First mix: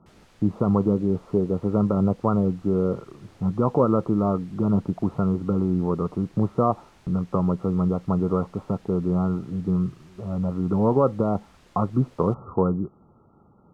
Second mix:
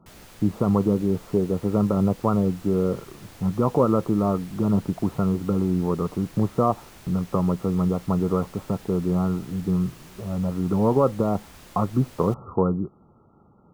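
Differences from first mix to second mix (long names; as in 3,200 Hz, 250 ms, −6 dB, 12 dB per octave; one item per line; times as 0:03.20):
background +7.5 dB
master: remove high-frequency loss of the air 55 metres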